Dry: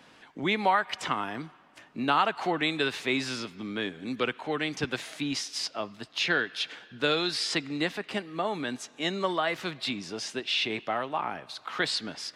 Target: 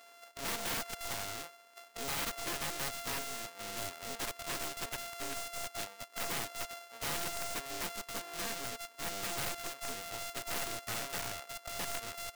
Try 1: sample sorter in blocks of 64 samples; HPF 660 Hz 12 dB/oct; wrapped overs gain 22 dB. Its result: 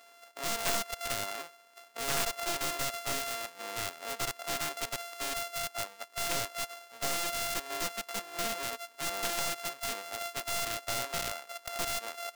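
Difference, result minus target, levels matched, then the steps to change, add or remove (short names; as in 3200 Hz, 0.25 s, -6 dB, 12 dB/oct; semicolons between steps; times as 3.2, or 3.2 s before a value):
wrapped overs: distortion -8 dB
change: wrapped overs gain 30.5 dB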